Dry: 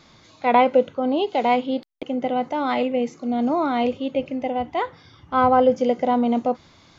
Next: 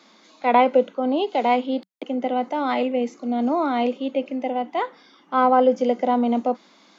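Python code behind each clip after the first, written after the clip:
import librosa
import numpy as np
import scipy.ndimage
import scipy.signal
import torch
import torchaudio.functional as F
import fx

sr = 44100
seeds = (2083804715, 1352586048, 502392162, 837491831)

y = scipy.signal.sosfilt(scipy.signal.cheby1(6, 1.0, 190.0, 'highpass', fs=sr, output='sos'), x)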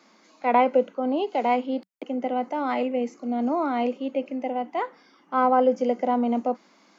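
y = fx.peak_eq(x, sr, hz=3600.0, db=-9.5, octaves=0.36)
y = F.gain(torch.from_numpy(y), -3.0).numpy()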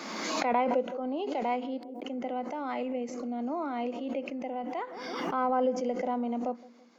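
y = fx.echo_banded(x, sr, ms=165, feedback_pct=56, hz=340.0, wet_db=-19.5)
y = fx.pre_swell(y, sr, db_per_s=31.0)
y = F.gain(torch.from_numpy(y), -8.5).numpy()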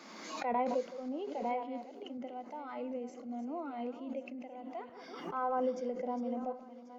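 y = fx.reverse_delay_fb(x, sr, ms=544, feedback_pct=41, wet_db=-9.0)
y = fx.noise_reduce_blind(y, sr, reduce_db=7)
y = F.gain(torch.from_numpy(y), -5.5).numpy()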